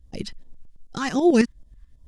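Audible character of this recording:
phaser sweep stages 2, 2.6 Hz, lowest notch 520–1,600 Hz
tremolo saw up 9.2 Hz, depth 65%

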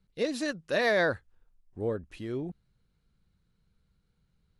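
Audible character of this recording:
background noise floor −74 dBFS
spectral slope −3.5 dB per octave

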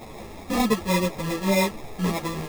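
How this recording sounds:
a quantiser's noise floor 6 bits, dither triangular
phaser sweep stages 4, 3.3 Hz, lowest notch 760–2,300 Hz
aliases and images of a low sample rate 1,500 Hz, jitter 0%
a shimmering, thickened sound

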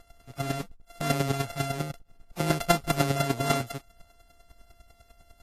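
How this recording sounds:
a buzz of ramps at a fixed pitch in blocks of 64 samples
chopped level 10 Hz, depth 65%, duty 15%
Ogg Vorbis

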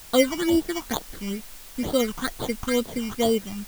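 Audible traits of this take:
aliases and images of a low sample rate 2,600 Hz, jitter 0%
phaser sweep stages 8, 2.2 Hz, lowest notch 510–2,100 Hz
a quantiser's noise floor 8 bits, dither triangular

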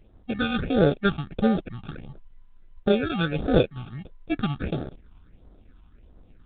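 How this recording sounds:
aliases and images of a low sample rate 1,000 Hz, jitter 0%
phaser sweep stages 6, 1.5 Hz, lowest notch 490–2,500 Hz
G.726

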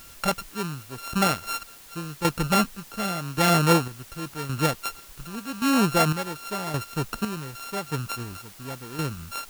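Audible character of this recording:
a buzz of ramps at a fixed pitch in blocks of 32 samples
chopped level 0.89 Hz, depth 65%, duty 45%
a quantiser's noise floor 8 bits, dither triangular

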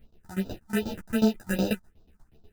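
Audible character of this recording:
aliases and images of a low sample rate 1,100 Hz, jitter 0%
phaser sweep stages 4, 2.6 Hz, lowest notch 430–2,000 Hz
tremolo saw down 8.2 Hz, depth 95%
a shimmering, thickened sound

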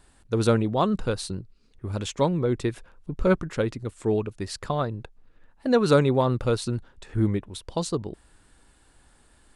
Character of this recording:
background noise floor −59 dBFS
spectral slope −6.5 dB per octave

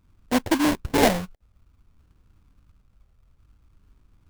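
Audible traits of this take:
phaser sweep stages 6, 0.56 Hz, lowest notch 320–1,300 Hz
aliases and images of a low sample rate 1,300 Hz, jitter 20%

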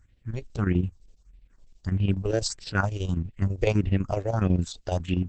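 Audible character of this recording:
a quantiser's noise floor 12 bits, dither triangular
phaser sweep stages 4, 1.6 Hz, lowest notch 180–1,200 Hz
chopped level 12 Hz, depth 60%, duty 70%
Opus

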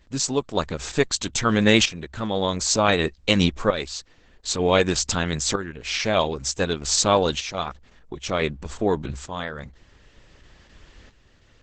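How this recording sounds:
tremolo saw up 0.54 Hz, depth 70%
Opus

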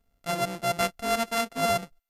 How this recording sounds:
a buzz of ramps at a fixed pitch in blocks of 64 samples
MP2

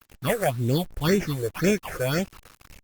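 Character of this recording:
aliases and images of a low sample rate 3,900 Hz, jitter 0%
phaser sweep stages 6, 1.9 Hz, lowest notch 220–1,200 Hz
a quantiser's noise floor 8 bits, dither none
Opus

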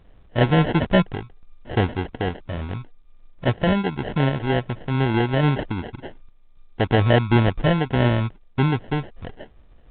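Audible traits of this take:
sample-and-hold tremolo
aliases and images of a low sample rate 1,200 Hz, jitter 0%
A-law companding

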